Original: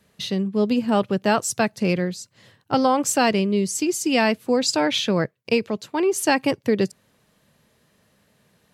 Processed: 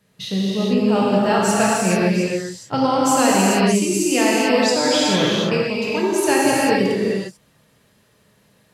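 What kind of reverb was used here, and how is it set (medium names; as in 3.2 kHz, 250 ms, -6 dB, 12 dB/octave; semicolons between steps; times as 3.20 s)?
gated-style reverb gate 470 ms flat, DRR -6.5 dB; trim -3 dB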